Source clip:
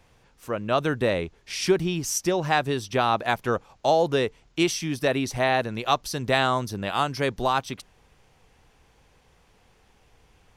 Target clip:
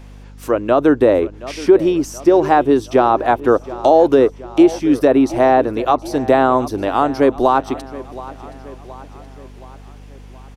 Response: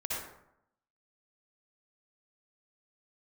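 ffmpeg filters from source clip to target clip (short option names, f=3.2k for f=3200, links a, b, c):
-filter_complex "[0:a]lowshelf=f=230:t=q:w=3:g=-7,acrossover=split=1300[a][b];[b]acompressor=threshold=-45dB:ratio=6[c];[a][c]amix=inputs=2:normalize=0,aeval=exprs='val(0)+0.00398*(sin(2*PI*50*n/s)+sin(2*PI*2*50*n/s)/2+sin(2*PI*3*50*n/s)/3+sin(2*PI*4*50*n/s)/4+sin(2*PI*5*50*n/s)/5)':c=same,aecho=1:1:723|1446|2169|2892:0.126|0.0667|0.0354|0.0187,alimiter=level_in=12dB:limit=-1dB:release=50:level=0:latency=1,volume=-1dB"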